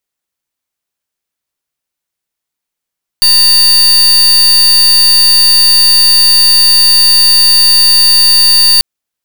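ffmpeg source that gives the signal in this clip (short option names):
-f lavfi -i "aevalsrc='0.501*(2*lt(mod(4590*t,1),0.38)-1)':d=5.59:s=44100"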